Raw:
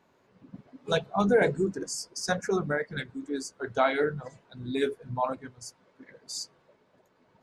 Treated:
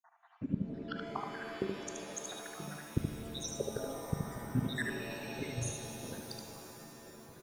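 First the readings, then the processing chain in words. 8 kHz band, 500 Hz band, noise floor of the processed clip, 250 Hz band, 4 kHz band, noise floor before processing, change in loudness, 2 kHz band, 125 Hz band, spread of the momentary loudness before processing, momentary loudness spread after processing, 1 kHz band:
-4.0 dB, -13.5 dB, -63 dBFS, -6.5 dB, -7.0 dB, -67 dBFS, -10.5 dB, -9.5 dB, -1.5 dB, 18 LU, 10 LU, -12.5 dB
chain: random spectral dropouts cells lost 82%; high shelf 4600 Hz -3 dB; flipped gate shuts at -34 dBFS, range -27 dB; low shelf 450 Hz +8 dB; low-pass opened by the level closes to 2800 Hz, open at -43 dBFS; on a send: echo 75 ms -4 dB; on the sum: shimmer reverb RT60 3.4 s, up +7 st, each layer -2 dB, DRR 5.5 dB; gain +8.5 dB

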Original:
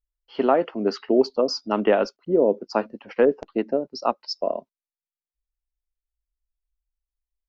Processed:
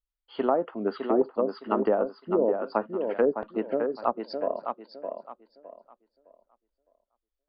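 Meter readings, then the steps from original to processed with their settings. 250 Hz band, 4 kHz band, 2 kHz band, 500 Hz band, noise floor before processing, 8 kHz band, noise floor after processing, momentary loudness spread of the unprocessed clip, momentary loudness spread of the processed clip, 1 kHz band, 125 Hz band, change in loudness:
-4.5 dB, -14.5 dB, -7.0 dB, -4.0 dB, under -85 dBFS, n/a, under -85 dBFS, 8 LU, 13 LU, -3.0 dB, -5.0 dB, -4.5 dB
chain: rippled Chebyshev low-pass 4800 Hz, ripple 6 dB; tape echo 0.611 s, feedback 28%, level -5.5 dB, low-pass 3600 Hz; treble ducked by the level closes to 860 Hz, closed at -20 dBFS

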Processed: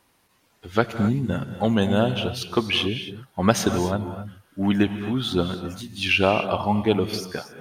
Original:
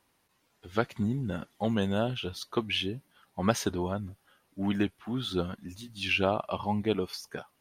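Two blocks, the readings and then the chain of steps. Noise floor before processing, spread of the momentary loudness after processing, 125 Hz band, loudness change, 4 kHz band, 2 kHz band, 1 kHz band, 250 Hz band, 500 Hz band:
-72 dBFS, 11 LU, +8.0 dB, +8.0 dB, +8.0 dB, +8.0 dB, +8.0 dB, +8.0 dB, +8.0 dB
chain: non-linear reverb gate 0.29 s rising, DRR 9 dB; gain +7.5 dB

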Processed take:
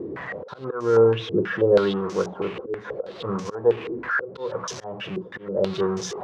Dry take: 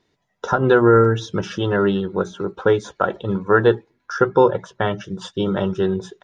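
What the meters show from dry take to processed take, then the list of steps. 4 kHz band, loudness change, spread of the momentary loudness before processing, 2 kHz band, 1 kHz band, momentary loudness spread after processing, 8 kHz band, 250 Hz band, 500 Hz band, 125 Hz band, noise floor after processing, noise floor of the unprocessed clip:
-3.0 dB, -5.5 dB, 12 LU, -5.0 dB, -9.5 dB, 14 LU, n/a, -7.5 dB, -3.5 dB, -9.0 dB, -42 dBFS, -70 dBFS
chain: zero-crossing step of -23.5 dBFS; auto swell 0.345 s; HPF 77 Hz; small resonant body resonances 480/1100 Hz, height 8 dB, ringing for 30 ms; stepped low-pass 6.2 Hz 360–6000 Hz; gain -8.5 dB

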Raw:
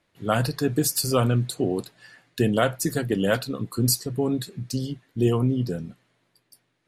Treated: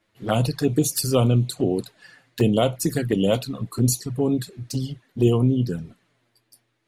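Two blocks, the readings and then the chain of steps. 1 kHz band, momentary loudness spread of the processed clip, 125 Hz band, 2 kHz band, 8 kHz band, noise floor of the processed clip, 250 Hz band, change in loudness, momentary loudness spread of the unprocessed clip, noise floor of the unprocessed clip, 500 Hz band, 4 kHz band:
-1.0 dB, 11 LU, +3.5 dB, -5.0 dB, 0.0 dB, -71 dBFS, +2.5 dB, +2.0 dB, 9 LU, -72 dBFS, +2.0 dB, 0.0 dB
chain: envelope flanger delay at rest 9.4 ms, full sweep at -19.5 dBFS; gain +3.5 dB

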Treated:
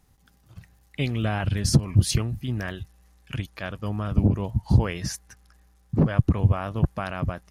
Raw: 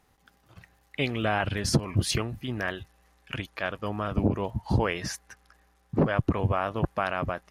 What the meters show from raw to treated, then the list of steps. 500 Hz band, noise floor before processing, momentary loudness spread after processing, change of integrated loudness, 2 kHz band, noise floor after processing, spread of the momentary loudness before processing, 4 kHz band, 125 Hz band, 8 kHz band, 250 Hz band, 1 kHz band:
-3.0 dB, -65 dBFS, 13 LU, +3.5 dB, -3.5 dB, -60 dBFS, 10 LU, 0.0 dB, +7.0 dB, +3.0 dB, +3.0 dB, -4.0 dB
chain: tone controls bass +12 dB, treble +8 dB; gain -4 dB

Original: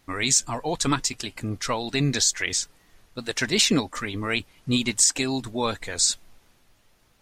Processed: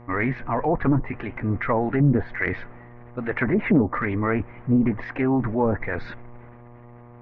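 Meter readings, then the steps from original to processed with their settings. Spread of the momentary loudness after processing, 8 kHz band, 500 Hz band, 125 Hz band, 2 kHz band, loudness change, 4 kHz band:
12 LU, under -40 dB, +5.0 dB, +6.5 dB, +1.0 dB, 0.0 dB, under -25 dB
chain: elliptic low-pass 2100 Hz, stop band 80 dB; treble ducked by the level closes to 420 Hz, closed at -20.5 dBFS; transient shaper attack -3 dB, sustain +7 dB; buzz 120 Hz, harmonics 10, -53 dBFS -5 dB/oct; Doppler distortion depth 0.2 ms; gain +7 dB

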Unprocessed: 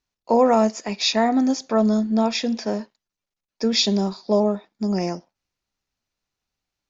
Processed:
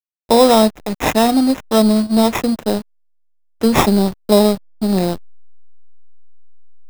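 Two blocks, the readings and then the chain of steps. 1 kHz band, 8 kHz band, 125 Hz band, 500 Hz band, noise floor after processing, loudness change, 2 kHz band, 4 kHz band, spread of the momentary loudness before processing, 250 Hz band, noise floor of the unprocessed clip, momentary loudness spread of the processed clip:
+6.0 dB, n/a, +7.5 dB, +6.0 dB, -58 dBFS, +6.0 dB, +6.5 dB, +2.0 dB, 9 LU, +6.5 dB, under -85 dBFS, 9 LU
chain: in parallel at -1.5 dB: vocal rider 2 s; on the sum: backlash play -17 dBFS; sample-rate reducer 4500 Hz, jitter 0%; gain +1.5 dB

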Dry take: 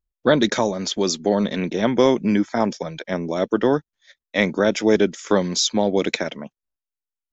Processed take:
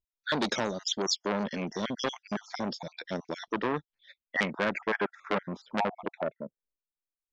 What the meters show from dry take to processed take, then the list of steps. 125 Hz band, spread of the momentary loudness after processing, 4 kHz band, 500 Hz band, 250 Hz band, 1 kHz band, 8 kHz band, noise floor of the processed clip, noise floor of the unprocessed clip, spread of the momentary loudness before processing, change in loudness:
-12.5 dB, 8 LU, -8.5 dB, -14.0 dB, -14.0 dB, -7.0 dB, n/a, under -85 dBFS, under -85 dBFS, 9 LU, -11.5 dB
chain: random spectral dropouts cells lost 42%; low-pass sweep 5100 Hz -> 350 Hz, 3.42–7.13; core saturation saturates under 2200 Hz; gain -7 dB

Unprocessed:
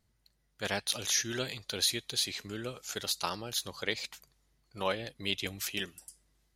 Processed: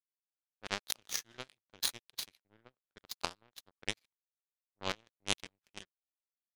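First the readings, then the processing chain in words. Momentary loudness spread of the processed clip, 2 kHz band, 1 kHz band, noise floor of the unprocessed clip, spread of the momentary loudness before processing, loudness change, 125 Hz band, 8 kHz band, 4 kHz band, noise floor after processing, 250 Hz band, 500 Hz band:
16 LU, -6.5 dB, -5.5 dB, -75 dBFS, 11 LU, -6.0 dB, -10.0 dB, -8.0 dB, -7.5 dB, under -85 dBFS, -10.5 dB, -10.5 dB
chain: low-pass opened by the level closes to 610 Hz, open at -27.5 dBFS; power-law curve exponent 3; mismatched tape noise reduction decoder only; gain +8 dB

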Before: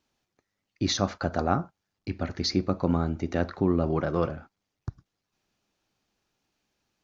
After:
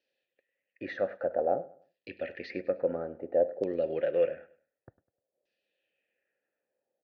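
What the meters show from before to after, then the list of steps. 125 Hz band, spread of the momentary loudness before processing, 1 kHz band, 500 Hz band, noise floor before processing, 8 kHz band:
-21.5 dB, 16 LU, -7.5 dB, +2.0 dB, -83 dBFS, n/a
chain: vowel filter e; high shelf 5400 Hz +6 dB; LFO low-pass saw down 0.55 Hz 550–5100 Hz; on a send: feedback echo 0.101 s, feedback 32%, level -19 dB; on the sum: gain +6 dB

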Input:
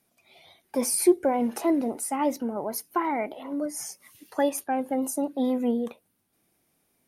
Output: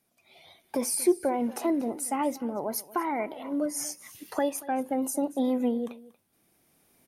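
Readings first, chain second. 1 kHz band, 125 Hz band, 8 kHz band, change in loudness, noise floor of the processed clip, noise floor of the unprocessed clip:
-2.0 dB, n/a, -1.5 dB, -2.0 dB, -71 dBFS, -72 dBFS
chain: recorder AGC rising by 7.6 dB/s; echo 0.234 s -19.5 dB; gain -3.5 dB

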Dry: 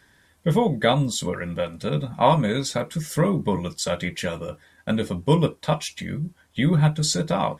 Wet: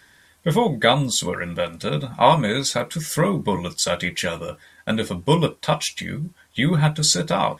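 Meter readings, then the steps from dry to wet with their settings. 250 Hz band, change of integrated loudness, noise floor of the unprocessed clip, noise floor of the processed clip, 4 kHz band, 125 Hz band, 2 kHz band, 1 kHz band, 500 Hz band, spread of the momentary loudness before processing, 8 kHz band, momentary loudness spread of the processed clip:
0.0 dB, +2.5 dB, -59 dBFS, -55 dBFS, +6.0 dB, 0.0 dB, +5.5 dB, +3.5 dB, +2.0 dB, 11 LU, +6.5 dB, 11 LU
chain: tilt shelf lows -3.5 dB, about 760 Hz; gain +3 dB

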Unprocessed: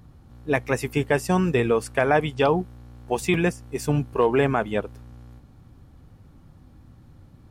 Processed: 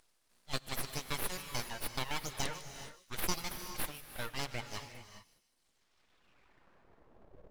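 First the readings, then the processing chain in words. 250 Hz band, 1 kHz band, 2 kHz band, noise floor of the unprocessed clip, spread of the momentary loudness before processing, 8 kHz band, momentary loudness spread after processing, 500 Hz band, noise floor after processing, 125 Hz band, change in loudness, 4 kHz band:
-22.5 dB, -16.5 dB, -14.5 dB, -52 dBFS, 9 LU, -2.5 dB, 11 LU, -25.0 dB, -76 dBFS, -19.5 dB, -16.5 dB, -3.0 dB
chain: reverb removal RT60 1.4 s; band-pass sweep 5100 Hz -> 270 Hz, 5.48–7.44; full-wave rectifier; thin delay 0.152 s, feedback 45%, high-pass 3200 Hz, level -13 dB; non-linear reverb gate 0.45 s rising, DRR 8.5 dB; gain +8 dB

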